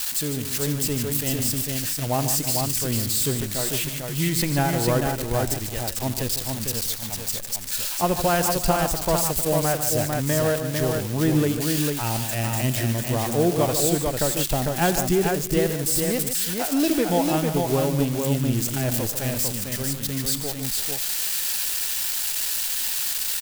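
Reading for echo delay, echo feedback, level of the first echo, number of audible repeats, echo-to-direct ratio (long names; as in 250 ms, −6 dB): 85 ms, repeats not evenly spaced, −15.0 dB, 4, −2.5 dB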